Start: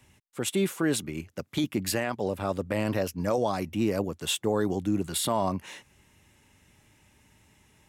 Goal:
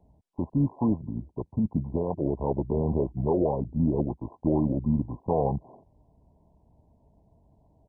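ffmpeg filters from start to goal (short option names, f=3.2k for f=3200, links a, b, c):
-af "asetrate=32097,aresample=44100,atempo=1.37395,volume=2dB" -ar 22050 -c:a mp2 -b:a 8k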